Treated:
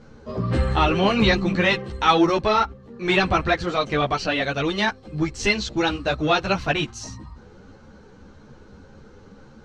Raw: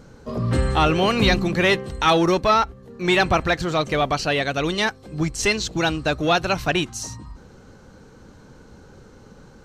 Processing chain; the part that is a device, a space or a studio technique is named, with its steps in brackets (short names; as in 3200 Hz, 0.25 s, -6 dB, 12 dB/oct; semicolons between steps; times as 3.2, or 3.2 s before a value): string-machine ensemble chorus (ensemble effect; LPF 5100 Hz 12 dB/oct); gain +2.5 dB